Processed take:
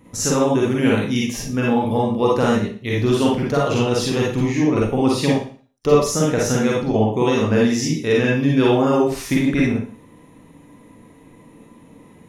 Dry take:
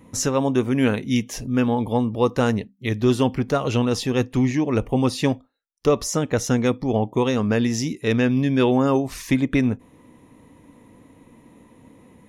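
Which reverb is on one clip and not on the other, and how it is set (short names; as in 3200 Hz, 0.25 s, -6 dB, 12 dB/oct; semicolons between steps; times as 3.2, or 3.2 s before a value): Schroeder reverb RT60 0.42 s, DRR -4 dB; gain -1.5 dB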